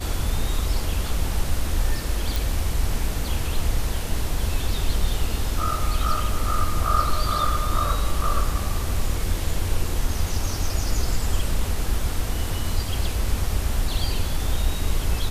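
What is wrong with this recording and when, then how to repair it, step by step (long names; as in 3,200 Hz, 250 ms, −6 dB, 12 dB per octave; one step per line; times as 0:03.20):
0:02.36: click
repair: click removal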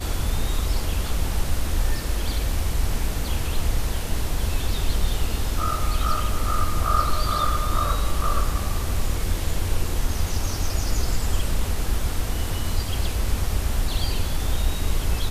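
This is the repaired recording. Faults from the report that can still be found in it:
none of them is left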